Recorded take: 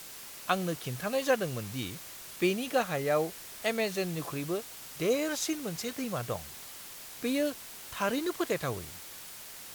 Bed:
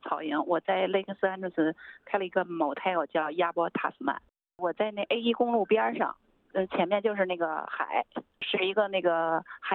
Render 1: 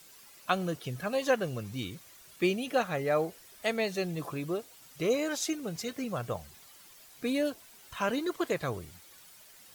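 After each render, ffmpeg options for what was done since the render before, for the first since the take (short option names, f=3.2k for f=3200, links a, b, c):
-af "afftdn=nr=11:nf=-46"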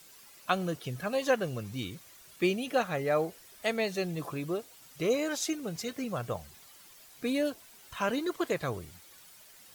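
-af anull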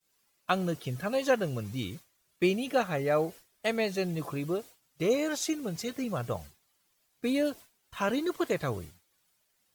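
-af "agate=range=-33dB:threshold=-42dB:ratio=3:detection=peak,lowshelf=f=430:g=3"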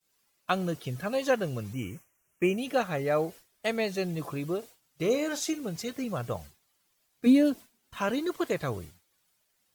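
-filter_complex "[0:a]asettb=1/sr,asplit=3[a][b][c];[a]atrim=end=1.734[d];[b]atrim=start=1.73:end=2.58,asetpts=PTS-STARTPTS,afade=t=in:d=0.004:c=qsin,afade=t=out:st=0.846:d=0.004:c=qsin,asuperstop=centerf=4100:order=8:qfactor=1.5[e];[c]atrim=start=2.576[f];[d][e]acrossfade=d=0.004:c1=hsin:c2=qsin[g];[g][f]acrossfade=d=0.004:c1=qsin:c2=hsin,asettb=1/sr,asplit=3[h][i][j];[h]atrim=end=4.584[k];[i]atrim=start=4.58:end=5.67,asetpts=PTS-STARTPTS,afade=t=in:d=0.004:c=qsin,afade=t=out:st=1.086:d=0.004:c=qsin,asplit=2[l][m];[m]adelay=44,volume=-14dB[n];[l][n]amix=inputs=2:normalize=0,atrim=end_sample=48069[o];[j]atrim=start=5.666[p];[k][o]acrossfade=d=0.004:c1=hsin:c2=qsin[q];[q][p]acrossfade=d=0.004:c1=qsin:c2=hsin,asettb=1/sr,asplit=3[r][s][t];[r]atrim=end=7.264[u];[s]atrim=start=7.26:end=7.98,asetpts=PTS-STARTPTS,afade=t=in:d=0.004:c=qsin,afade=t=out:st=0.716:d=0.004:c=qsin,equalizer=f=240:t=o:w=0.77:g=12[v];[t]atrim=start=7.976[w];[u][v]acrossfade=d=0.004:c1=hsin:c2=qsin[x];[x][w]acrossfade=d=0.004:c1=qsin:c2=hsin"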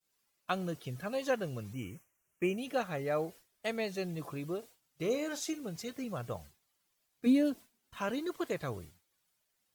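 -af "volume=-6dB"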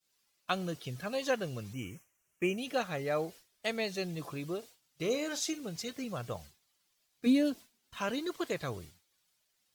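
-af "equalizer=f=4.4k:w=0.67:g=6"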